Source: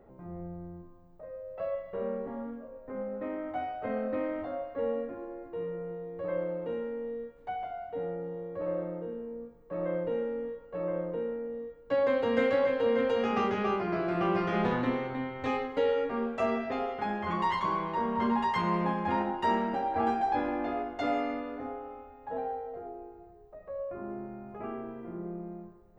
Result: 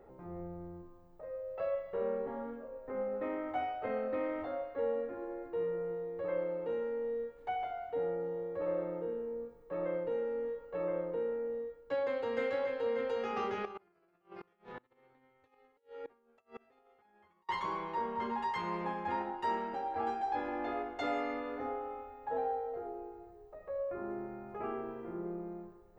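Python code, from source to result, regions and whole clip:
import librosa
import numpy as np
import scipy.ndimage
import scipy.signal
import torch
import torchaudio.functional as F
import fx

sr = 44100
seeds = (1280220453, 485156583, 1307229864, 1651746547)

y = fx.chain(x, sr, fx.over_compress(threshold_db=-34.0, ratio=-0.5),
    fx.gate_flip(shuts_db=-30.0, range_db=-29),
    fx.quant_float(bits=8), at=(13.65, 17.49))
y = fx.low_shelf(y, sr, hz=280.0, db=-6.0)
y = y + 0.32 * np.pad(y, (int(2.3 * sr / 1000.0), 0))[:len(y)]
y = fx.rider(y, sr, range_db=4, speed_s=0.5)
y = y * 10.0 ** (-3.0 / 20.0)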